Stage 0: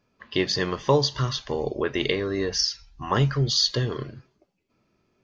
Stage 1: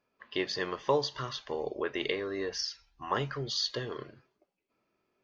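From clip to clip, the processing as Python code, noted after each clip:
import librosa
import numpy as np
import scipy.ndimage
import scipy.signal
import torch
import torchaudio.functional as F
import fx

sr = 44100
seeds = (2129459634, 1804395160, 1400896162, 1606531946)

y = fx.bass_treble(x, sr, bass_db=-12, treble_db=-7)
y = y * 10.0 ** (-5.5 / 20.0)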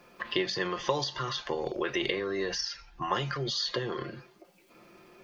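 y = x + 0.56 * np.pad(x, (int(5.7 * sr / 1000.0), 0))[:len(x)]
y = fx.transient(y, sr, attack_db=2, sustain_db=6)
y = fx.band_squash(y, sr, depth_pct=70)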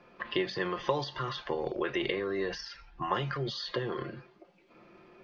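y = fx.air_absorb(x, sr, metres=200.0)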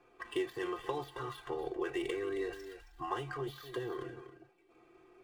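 y = scipy.signal.medfilt(x, 9)
y = y + 0.88 * np.pad(y, (int(2.6 * sr / 1000.0), 0))[:len(y)]
y = y + 10.0 ** (-11.5 / 20.0) * np.pad(y, (int(271 * sr / 1000.0), 0))[:len(y)]
y = y * 10.0 ** (-8.5 / 20.0)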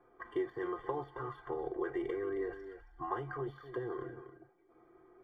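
y = scipy.signal.savgol_filter(x, 41, 4, mode='constant')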